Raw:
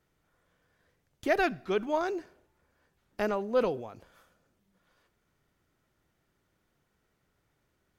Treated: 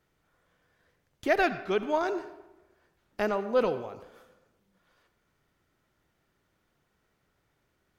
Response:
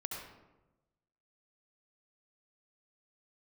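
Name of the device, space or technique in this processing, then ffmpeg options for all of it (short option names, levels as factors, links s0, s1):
filtered reverb send: -filter_complex "[0:a]asplit=2[s0][s1];[s1]highpass=f=520:p=1,lowpass=6400[s2];[1:a]atrim=start_sample=2205[s3];[s2][s3]afir=irnorm=-1:irlink=0,volume=0.447[s4];[s0][s4]amix=inputs=2:normalize=0"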